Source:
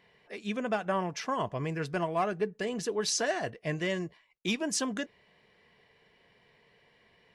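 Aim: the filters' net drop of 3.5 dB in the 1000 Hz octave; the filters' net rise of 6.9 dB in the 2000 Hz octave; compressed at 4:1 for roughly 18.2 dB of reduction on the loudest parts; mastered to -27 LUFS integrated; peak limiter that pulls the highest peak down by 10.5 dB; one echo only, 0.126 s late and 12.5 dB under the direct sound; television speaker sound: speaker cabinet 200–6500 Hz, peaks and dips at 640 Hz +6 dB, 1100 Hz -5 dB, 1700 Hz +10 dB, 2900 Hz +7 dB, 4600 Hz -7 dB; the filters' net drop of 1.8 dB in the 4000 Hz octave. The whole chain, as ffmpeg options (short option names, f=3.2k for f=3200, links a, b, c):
-af "equalizer=f=1k:t=o:g=-7.5,equalizer=f=2k:t=o:g=4,equalizer=f=4k:t=o:g=-7,acompressor=threshold=-50dB:ratio=4,alimiter=level_in=22dB:limit=-24dB:level=0:latency=1,volume=-22dB,highpass=f=200:w=0.5412,highpass=f=200:w=1.3066,equalizer=f=640:t=q:w=4:g=6,equalizer=f=1.1k:t=q:w=4:g=-5,equalizer=f=1.7k:t=q:w=4:g=10,equalizer=f=2.9k:t=q:w=4:g=7,equalizer=f=4.6k:t=q:w=4:g=-7,lowpass=f=6.5k:w=0.5412,lowpass=f=6.5k:w=1.3066,aecho=1:1:126:0.237,volume=26.5dB"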